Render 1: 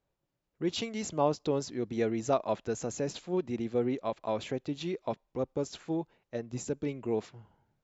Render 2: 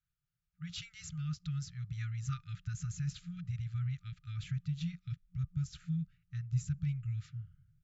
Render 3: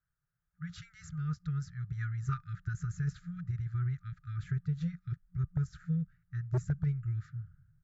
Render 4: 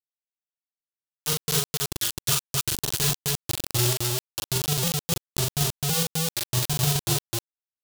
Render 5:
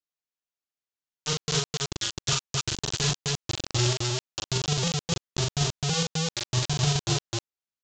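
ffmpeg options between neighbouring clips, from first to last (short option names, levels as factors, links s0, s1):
-af "equalizer=f=1100:t=o:w=0.67:g=4.5,afftfilt=real='re*(1-between(b*sr/4096,180,1200))':imag='im*(1-between(b*sr/4096,180,1200))':win_size=4096:overlap=0.75,asubboost=boost=9:cutoff=240,volume=0.422"
-af "aeval=exprs='0.0447*(abs(mod(val(0)/0.0447+3,4)-2)-1)':c=same,highshelf=f=2100:t=q:w=3:g=-8.5,aeval=exprs='0.0473*(cos(1*acos(clip(val(0)/0.0473,-1,1)))-cos(1*PI/2))+0.00299*(cos(3*acos(clip(val(0)/0.0473,-1,1)))-cos(3*PI/2))':c=same,volume=1.58"
-filter_complex "[0:a]acrusher=bits=4:mix=0:aa=0.000001,aexciter=amount=5.8:drive=3.6:freq=2900,asplit=2[s0][s1];[s1]aecho=0:1:40.82|259.5:0.794|0.891[s2];[s0][s2]amix=inputs=2:normalize=0"
-af "aresample=16000,aresample=44100"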